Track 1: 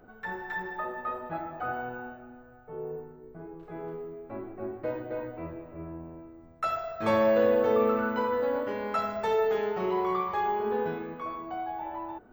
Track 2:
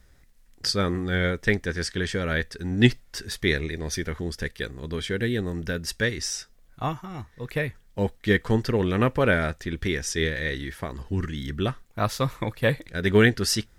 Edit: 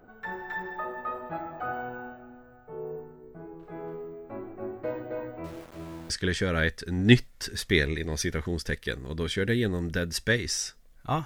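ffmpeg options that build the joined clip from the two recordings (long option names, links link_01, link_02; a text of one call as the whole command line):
ffmpeg -i cue0.wav -i cue1.wav -filter_complex "[0:a]asettb=1/sr,asplit=3[link_01][link_02][link_03];[link_01]atrim=end=5.444[link_04];[link_02]atrim=start=5.44:end=6.1,asetpts=PTS-STARTPTS,afade=type=in:duration=0.004:curve=qsin,afade=type=out:start_time=0.656:duration=0.004:curve=qsin,aeval=exprs='val(0)*gte(abs(val(0)),0.00631)':channel_layout=same[link_05];[link_03]atrim=start=6.096[link_06];[link_04][link_05]acrossfade=duration=0.004:curve1=hsin:curve2=qsin[link_07];[link_07][link_06]acrossfade=duration=0.004:curve1=qsin:curve2=hsin,apad=whole_dur=11.25,atrim=end=11.25,atrim=end=6.102[link_08];[1:a]atrim=start=1.828:end=6.98[link_09];[link_08][link_09]acrossfade=duration=0.004:curve1=hsin:curve2=hsin" out.wav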